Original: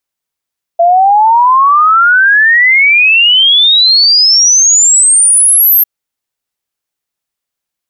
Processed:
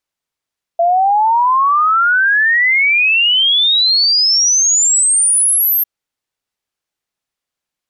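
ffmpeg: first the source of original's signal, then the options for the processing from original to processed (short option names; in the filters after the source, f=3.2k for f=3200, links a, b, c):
-f lavfi -i "aevalsrc='0.668*clip(min(t,5.05-t)/0.01,0,1)*sin(2*PI*670*5.05/log(13000/670)*(exp(log(13000/670)*t/5.05)-1))':d=5.05:s=44100"
-af "highshelf=f=9.8k:g=-10.5,alimiter=limit=-9dB:level=0:latency=1"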